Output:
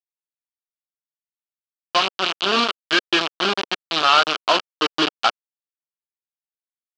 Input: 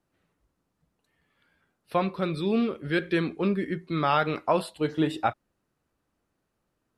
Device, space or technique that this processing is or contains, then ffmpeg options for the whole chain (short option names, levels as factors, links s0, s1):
hand-held game console: -filter_complex "[0:a]asettb=1/sr,asplit=3[s0][s1][s2];[s0]atrim=end=3.044[s3];[s1]atrim=start=3.04:end=4.01,asetpts=PTS-STARTPTS,afade=t=in:d=0.004:c=qsin,afade=t=out:st=0.966:d=0.004:c=qsin,highpass=72[s4];[s2]atrim=start=4.006[s5];[s3][s4]acrossfade=d=0.004:c1=hsin:c2=qsin[s6];[s6][s5]acrossfade=d=0.004:c1=qsin:c2=hsin,acrusher=bits=3:mix=0:aa=0.000001,highpass=440,equalizer=f=520:t=q:w=4:g=-9,equalizer=f=850:t=q:w=4:g=-5,equalizer=f=1300:t=q:w=4:g=4,equalizer=f=2000:t=q:w=4:g=-8,equalizer=f=3000:t=q:w=4:g=8,equalizer=f=4500:t=q:w=4:g=4,lowpass=f=5000:w=0.5412,lowpass=f=5000:w=1.3066,volume=2.51"